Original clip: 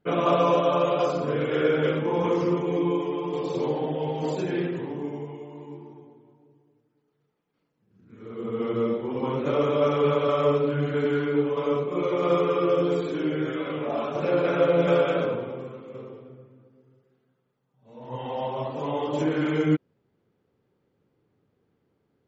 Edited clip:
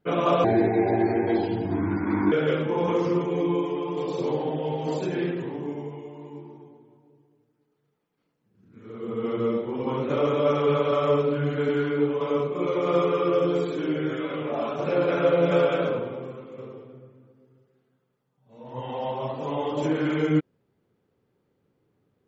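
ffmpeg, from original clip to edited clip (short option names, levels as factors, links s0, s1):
-filter_complex "[0:a]asplit=3[s0][s1][s2];[s0]atrim=end=0.444[s3];[s1]atrim=start=0.44:end=1.68,asetpts=PTS-STARTPTS,asetrate=29106,aresample=44100[s4];[s2]atrim=start=1.676[s5];[s3][s4]acrossfade=d=0.004:c1=hsin:c2=hsin[s6];[s6][s5]acrossfade=d=0.004:c1=hsin:c2=hsin"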